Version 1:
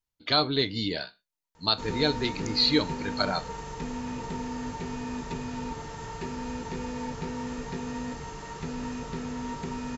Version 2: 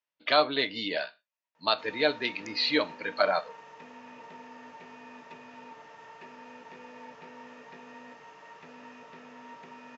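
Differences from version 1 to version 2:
background −11.0 dB
master: add loudspeaker in its box 330–5,300 Hz, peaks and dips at 380 Hz −5 dB, 610 Hz +8 dB, 1,100 Hz +4 dB, 1,800 Hz +5 dB, 2,600 Hz +6 dB, 4,300 Hz −6 dB

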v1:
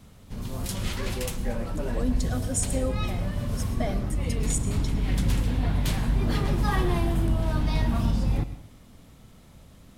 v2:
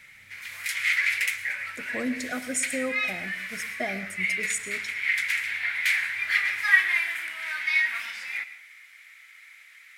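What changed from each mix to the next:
background: add high-pass with resonance 2,100 Hz, resonance Q 4.5
master: add flat-topped bell 1,800 Hz +9 dB 1 octave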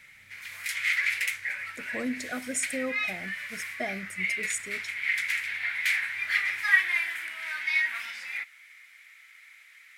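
reverb: off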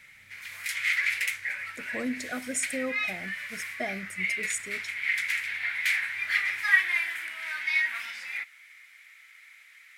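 nothing changed

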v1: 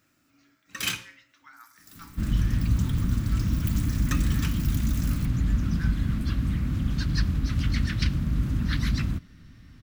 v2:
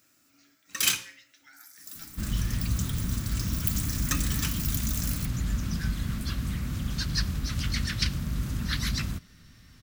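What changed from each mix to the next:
speech: add Butterworth band-reject 1,100 Hz, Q 1.6
second sound: add parametric band 290 Hz −6.5 dB 0.42 octaves
master: add bass and treble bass −5 dB, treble +9 dB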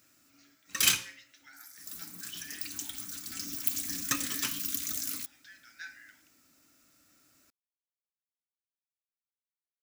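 second sound: muted

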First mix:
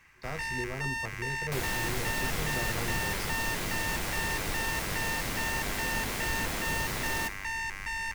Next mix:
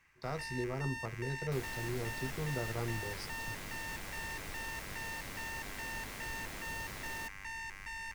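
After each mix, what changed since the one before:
first sound −9.0 dB
second sound −9.5 dB
reverb: off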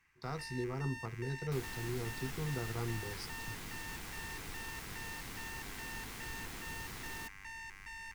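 first sound −4.0 dB
master: add parametric band 590 Hz −12 dB 0.32 octaves

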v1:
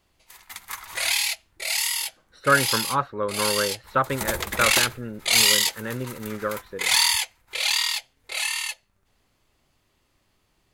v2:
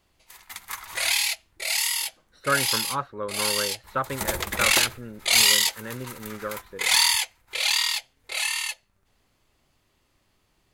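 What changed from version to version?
speech −5.0 dB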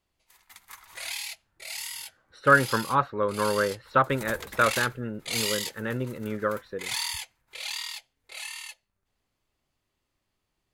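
speech +5.5 dB
background −11.5 dB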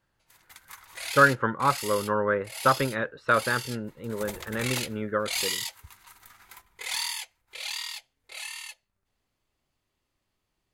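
speech: entry −1.30 s

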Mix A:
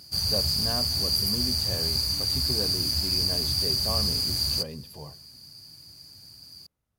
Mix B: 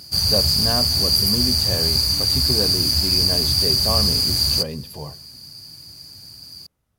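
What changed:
speech +8.5 dB
background +7.5 dB

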